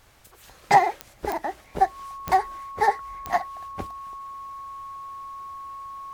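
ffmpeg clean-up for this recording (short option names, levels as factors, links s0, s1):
-af "adeclick=t=4,bandreject=f=1100:w=30"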